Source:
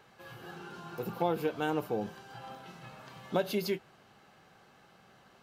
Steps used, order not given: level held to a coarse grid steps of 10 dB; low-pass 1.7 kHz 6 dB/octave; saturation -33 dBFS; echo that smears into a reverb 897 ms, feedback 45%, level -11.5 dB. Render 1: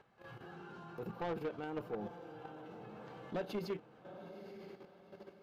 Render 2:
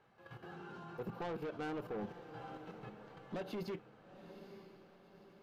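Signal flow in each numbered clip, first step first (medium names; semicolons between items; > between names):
echo that smears into a reverb > level held to a coarse grid > low-pass > saturation; low-pass > saturation > level held to a coarse grid > echo that smears into a reverb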